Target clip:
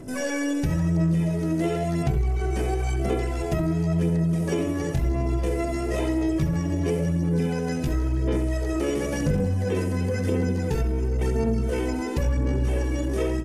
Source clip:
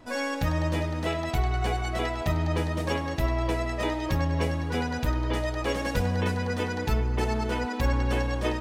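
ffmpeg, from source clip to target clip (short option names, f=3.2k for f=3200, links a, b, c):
-filter_complex "[0:a]bass=f=250:g=3,treble=f=4k:g=11,aphaser=in_gain=1:out_gain=1:delay=3.3:decay=0.5:speed=1.5:type=sinusoidal,atempo=0.64,asplit=2[a][b];[b]adelay=68,lowpass=f=1.8k:p=1,volume=-5.5dB,asplit=2[c][d];[d]adelay=68,lowpass=f=1.8k:p=1,volume=0.25,asplit=2[e][f];[f]adelay=68,lowpass=f=1.8k:p=1,volume=0.25[g];[c][e][g]amix=inputs=3:normalize=0[h];[a][h]amix=inputs=2:normalize=0,acrossover=split=5400[i][j];[j]acompressor=threshold=-47dB:ratio=4:attack=1:release=60[k];[i][k]amix=inputs=2:normalize=0,asetrate=45392,aresample=44100,atempo=0.971532,equalizer=f=160:t=o:w=0.67:g=11,equalizer=f=400:t=o:w=0.67:g=10,equalizer=f=1k:t=o:w=0.67:g=-6,equalizer=f=4k:t=o:w=0.67:g=-10,equalizer=f=10k:t=o:w=0.67:g=7,acompressor=threshold=-21dB:ratio=3,asoftclip=type=tanh:threshold=-9.5dB" -ar 32000 -c:a libmp3lame -b:a 80k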